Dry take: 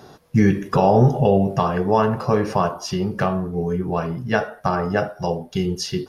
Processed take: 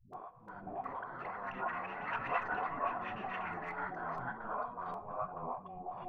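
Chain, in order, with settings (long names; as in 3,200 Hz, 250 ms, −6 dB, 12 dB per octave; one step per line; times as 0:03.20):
lower of the sound and its delayed copy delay 0.64 ms
in parallel at −1 dB: brickwall limiter −15.5 dBFS, peak gain reduction 10.5 dB
on the sum: compressor whose output falls as the input rises −28 dBFS, ratio −1
formant resonators in series a
tape wow and flutter 21 cents
all-pass dispersion highs, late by 135 ms, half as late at 300 Hz
delay with pitch and tempo change per echo 384 ms, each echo +5 semitones, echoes 3
on a send at −17 dB: convolution reverb RT60 0.60 s, pre-delay 4 ms
on the sum: level +2 dB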